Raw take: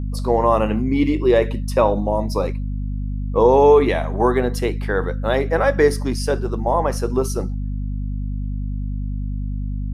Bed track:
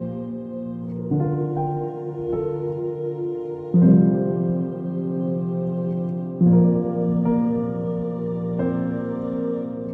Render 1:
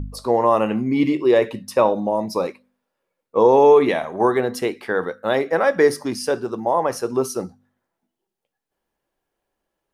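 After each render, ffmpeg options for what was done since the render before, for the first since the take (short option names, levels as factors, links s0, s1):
-af "bandreject=f=50:t=h:w=4,bandreject=f=100:t=h:w=4,bandreject=f=150:t=h:w=4,bandreject=f=200:t=h:w=4,bandreject=f=250:t=h:w=4"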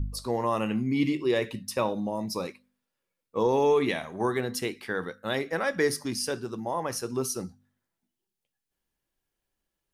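-af "equalizer=f=650:w=0.45:g=-12.5"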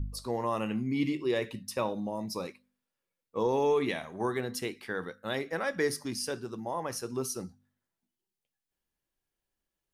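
-af "volume=0.631"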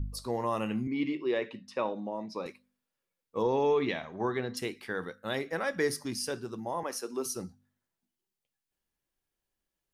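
-filter_complex "[0:a]asettb=1/sr,asplit=3[s0][s1][s2];[s0]atrim=end=0.874[s3];[s1]atrim=start=0.87:end=2.46,asetpts=PTS-STARTPTS,afade=t=in:d=0.004:c=qsin,afade=t=out:st=1.586:d=0.004:c=qsin,highpass=230,lowpass=3300[s4];[s2]atrim=start=2.456[s5];[s3][s4]acrossfade=d=0.004:c1=hsin:c2=qsin[s6];[s6][s5]acrossfade=d=0.004:c1=qsin:c2=hsin,asettb=1/sr,asplit=3[s7][s8][s9];[s7]atrim=end=3.424[s10];[s8]atrim=start=3.42:end=4.57,asetpts=PTS-STARTPTS,afade=t=in:d=0.004:c=qsin,afade=t=out:st=1.146:d=0.004:c=qsin,lowpass=f=5400:w=0.5412,lowpass=f=5400:w=1.3066[s11];[s9]atrim=start=4.566[s12];[s10][s11]acrossfade=d=0.004:c1=hsin:c2=qsin[s13];[s13][s12]acrossfade=d=0.004:c1=qsin:c2=hsin,asettb=1/sr,asplit=3[s14][s15][s16];[s14]atrim=end=6.834[s17];[s15]atrim=start=6.83:end=7.26,asetpts=PTS-STARTPTS,afade=t=in:d=0.004:c=qsin,afade=t=out:st=0.426:d=0.004:c=qsin,highpass=f=240:w=0.5412,highpass=f=240:w=1.3066[s18];[s16]atrim=start=7.256[s19];[s17][s18]acrossfade=d=0.004:c1=hsin:c2=qsin[s20];[s20][s19]acrossfade=d=0.004:c1=qsin:c2=hsin"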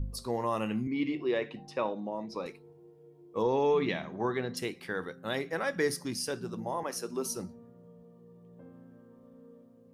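-filter_complex "[1:a]volume=0.0355[s0];[0:a][s0]amix=inputs=2:normalize=0"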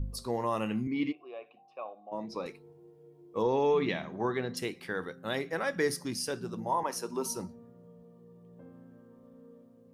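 -filter_complex "[0:a]asplit=3[s0][s1][s2];[s0]afade=t=out:st=1.11:d=0.02[s3];[s1]asplit=3[s4][s5][s6];[s4]bandpass=f=730:t=q:w=8,volume=1[s7];[s5]bandpass=f=1090:t=q:w=8,volume=0.501[s8];[s6]bandpass=f=2440:t=q:w=8,volume=0.355[s9];[s7][s8][s9]amix=inputs=3:normalize=0,afade=t=in:st=1.11:d=0.02,afade=t=out:st=2.11:d=0.02[s10];[s2]afade=t=in:st=2.11:d=0.02[s11];[s3][s10][s11]amix=inputs=3:normalize=0,asettb=1/sr,asplit=3[s12][s13][s14];[s12]atrim=end=6.694[s15];[s13]atrim=start=6.69:end=7.47,asetpts=PTS-STARTPTS,afade=t=in:d=0.004:c=qsin,afade=t=out:st=0.776:d=0.004:c=qsin,equalizer=f=940:t=o:w=0.24:g=11.5[s16];[s14]atrim=start=7.466[s17];[s15][s16]acrossfade=d=0.004:c1=hsin:c2=qsin[s18];[s18][s17]acrossfade=d=0.004:c1=qsin:c2=hsin"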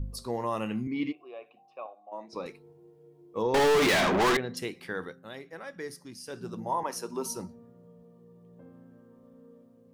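-filter_complex "[0:a]asettb=1/sr,asplit=3[s0][s1][s2];[s0]atrim=end=1.864[s3];[s1]atrim=start=1.86:end=2.33,asetpts=PTS-STARTPTS,afade=t=in:d=0.004:c=qsin,afade=t=out:st=0.466:d=0.004:c=qsin,highpass=420,equalizer=f=450:t=q:w=4:g=-7,equalizer=f=3200:t=q:w=4:g=-7,equalizer=f=4900:t=q:w=4:g=-8,lowpass=f=9100:w=0.5412,lowpass=f=9100:w=1.3066[s4];[s2]atrim=start=2.326[s5];[s3][s4]acrossfade=d=0.004:c1=hsin:c2=qsin[s6];[s6][s5]acrossfade=d=0.004:c1=qsin:c2=hsin,asettb=1/sr,asplit=3[s7][s8][s9];[s7]atrim=end=3.544[s10];[s8]atrim=start=3.54:end=4.37,asetpts=PTS-STARTPTS,afade=t=in:d=0.004:c=qsin,afade=t=out:st=0.826:d=0.004:c=qsin,asplit=2[s11][s12];[s12]highpass=f=720:p=1,volume=79.4,asoftclip=type=tanh:threshold=0.141[s13];[s11][s13]amix=inputs=2:normalize=0,lowpass=f=7600:p=1,volume=0.501[s14];[s9]atrim=start=4.366[s15];[s10][s14]acrossfade=d=0.004:c1=hsin:c2=qsin[s16];[s16][s15]acrossfade=d=0.004:c1=qsin:c2=hsin,asplit=3[s17][s18][s19];[s17]atrim=end=5.29,asetpts=PTS-STARTPTS,afade=t=out:st=5.06:d=0.23:silence=0.316228[s20];[s18]atrim=start=5.29:end=6.24,asetpts=PTS-STARTPTS,volume=0.316[s21];[s19]atrim=start=6.24,asetpts=PTS-STARTPTS,afade=t=in:d=0.23:silence=0.316228[s22];[s20][s21][s22]concat=n=3:v=0:a=1"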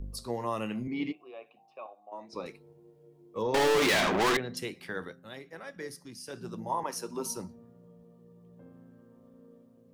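-filter_complex "[0:a]acrossover=split=230|1800[s0][s1][s2];[s0]asoftclip=type=tanh:threshold=0.0178[s3];[s1]tremolo=f=110:d=0.519[s4];[s3][s4][s2]amix=inputs=3:normalize=0"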